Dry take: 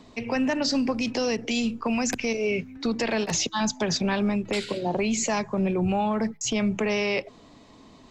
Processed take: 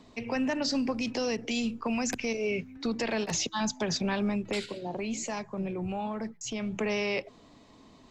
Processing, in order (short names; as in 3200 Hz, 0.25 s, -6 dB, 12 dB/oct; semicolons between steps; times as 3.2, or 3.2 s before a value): 4.66–6.73 flange 1.3 Hz, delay 1.1 ms, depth 9.2 ms, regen +89%; gain -4.5 dB